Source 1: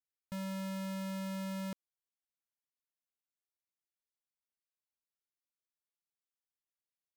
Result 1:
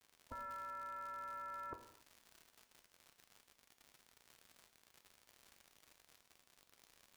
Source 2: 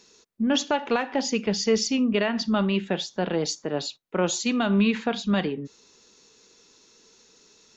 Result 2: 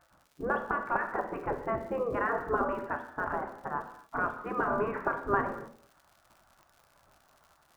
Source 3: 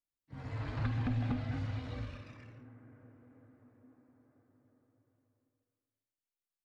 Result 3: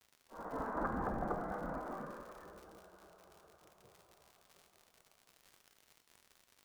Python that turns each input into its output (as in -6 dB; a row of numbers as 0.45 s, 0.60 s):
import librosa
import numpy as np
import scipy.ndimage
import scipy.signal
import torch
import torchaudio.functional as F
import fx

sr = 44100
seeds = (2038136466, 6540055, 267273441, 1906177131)

y = scipy.signal.sosfilt(scipy.signal.butter(6, 1400.0, 'lowpass', fs=sr, output='sos'), x)
y = fx.spec_gate(y, sr, threshold_db=-15, keep='weak')
y = fx.dmg_crackle(y, sr, seeds[0], per_s=120.0, level_db=-56.0)
y = fx.rev_gated(y, sr, seeds[1], gate_ms=300, shape='falling', drr_db=6.0)
y = F.gain(torch.from_numpy(y), 8.5).numpy()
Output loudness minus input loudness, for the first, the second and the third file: -7.0 LU, -7.5 LU, -4.0 LU